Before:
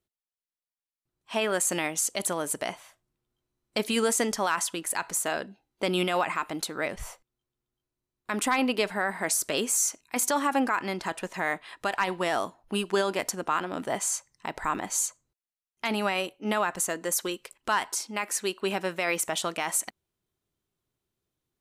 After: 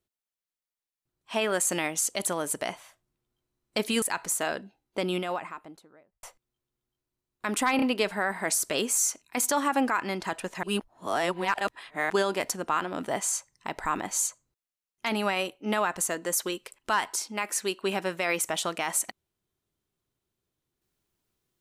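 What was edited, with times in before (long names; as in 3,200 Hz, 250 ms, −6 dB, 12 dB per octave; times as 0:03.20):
0:04.02–0:04.87: remove
0:05.46–0:07.08: fade out and dull
0:08.61: stutter 0.03 s, 3 plays
0:11.42–0:12.89: reverse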